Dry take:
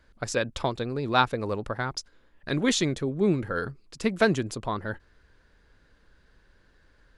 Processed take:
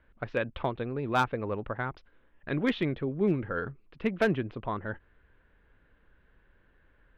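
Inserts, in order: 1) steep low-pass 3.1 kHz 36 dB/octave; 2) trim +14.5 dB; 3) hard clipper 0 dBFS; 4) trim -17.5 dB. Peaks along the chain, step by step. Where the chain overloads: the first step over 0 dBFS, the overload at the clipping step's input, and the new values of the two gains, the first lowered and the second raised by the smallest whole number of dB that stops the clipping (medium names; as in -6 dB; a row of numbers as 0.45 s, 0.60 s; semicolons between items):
-6.5 dBFS, +8.0 dBFS, 0.0 dBFS, -17.5 dBFS; step 2, 8.0 dB; step 2 +6.5 dB, step 4 -9.5 dB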